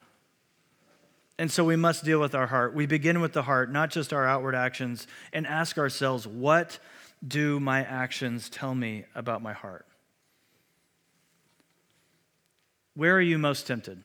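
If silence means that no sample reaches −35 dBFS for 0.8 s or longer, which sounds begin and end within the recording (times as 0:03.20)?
0:01.39–0:09.77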